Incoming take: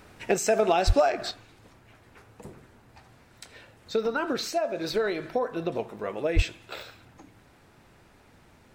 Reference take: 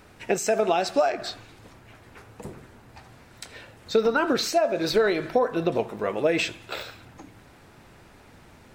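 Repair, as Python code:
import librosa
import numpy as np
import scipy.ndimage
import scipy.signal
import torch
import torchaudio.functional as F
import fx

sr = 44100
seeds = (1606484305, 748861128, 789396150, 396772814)

y = fx.fix_declip(x, sr, threshold_db=-12.0)
y = fx.fix_deplosive(y, sr, at_s=(0.86, 6.35))
y = fx.fix_level(y, sr, at_s=1.31, step_db=5.5)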